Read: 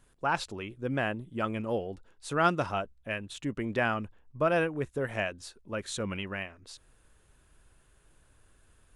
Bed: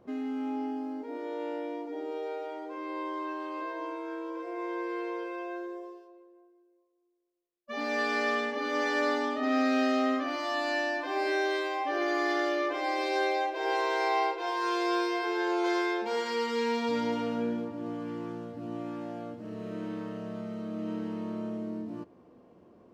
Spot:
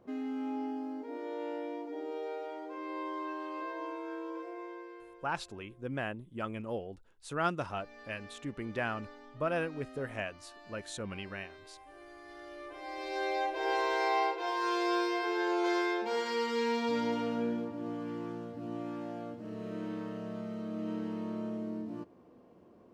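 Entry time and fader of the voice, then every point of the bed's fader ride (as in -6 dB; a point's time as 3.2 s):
5.00 s, -6.0 dB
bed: 4.37 s -3 dB
5.36 s -23.5 dB
12.23 s -23.5 dB
13.46 s -2 dB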